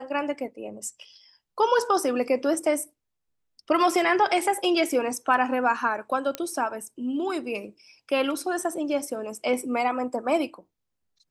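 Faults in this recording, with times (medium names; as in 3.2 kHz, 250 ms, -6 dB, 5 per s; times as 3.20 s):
6.35 s: pop -12 dBFS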